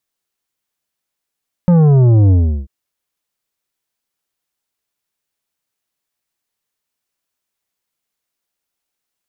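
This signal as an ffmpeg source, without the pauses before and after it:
-f lavfi -i "aevalsrc='0.422*clip((0.99-t)/0.36,0,1)*tanh(2.99*sin(2*PI*180*0.99/log(65/180)*(exp(log(65/180)*t/0.99)-1)))/tanh(2.99)':d=0.99:s=44100"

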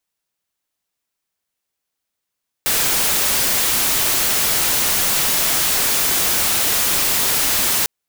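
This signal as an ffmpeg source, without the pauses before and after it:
-f lavfi -i "anoisesrc=c=white:a=0.231:d=5.2:r=44100:seed=1"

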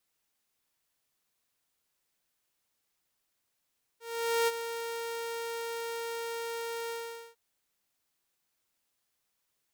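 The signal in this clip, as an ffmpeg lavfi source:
-f lavfi -i "aevalsrc='0.0841*(2*mod(463*t,1)-1)':d=3.352:s=44100,afade=t=in:d=0.475,afade=t=out:st=0.475:d=0.032:silence=0.299,afade=t=out:st=2.9:d=0.452"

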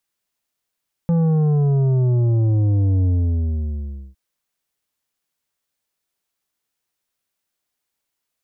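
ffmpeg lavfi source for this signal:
-f lavfi -i "aevalsrc='0.178*clip((3.06-t)/1.1,0,1)*tanh(2.66*sin(2*PI*170*3.06/log(65/170)*(exp(log(65/170)*t/3.06)-1)))/tanh(2.66)':d=3.06:s=44100"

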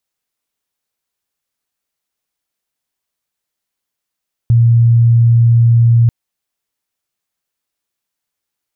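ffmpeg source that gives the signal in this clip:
-f lavfi -i "sine=f=117:d=1.59:r=44100,volume=12.56dB"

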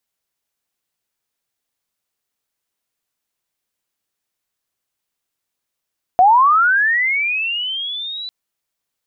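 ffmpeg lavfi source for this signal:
-f lavfi -i "aevalsrc='pow(10,(-6.5-19*t/2.1)/20)*sin(2*PI*(700*t+3300*t*t/(2*2.1)))':d=2.1:s=44100"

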